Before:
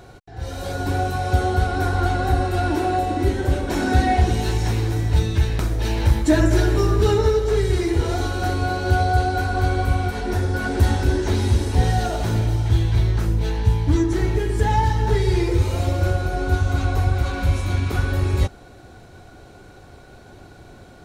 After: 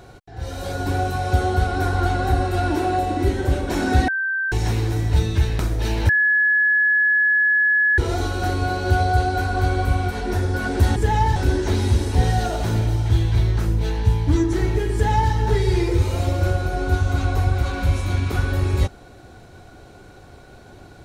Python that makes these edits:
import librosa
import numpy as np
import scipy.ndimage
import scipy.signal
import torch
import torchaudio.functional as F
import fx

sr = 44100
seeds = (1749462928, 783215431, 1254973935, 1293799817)

y = fx.edit(x, sr, fx.bleep(start_s=4.08, length_s=0.44, hz=1560.0, db=-20.0),
    fx.bleep(start_s=6.09, length_s=1.89, hz=1700.0, db=-14.0),
    fx.duplicate(start_s=14.53, length_s=0.4, to_s=10.96), tone=tone)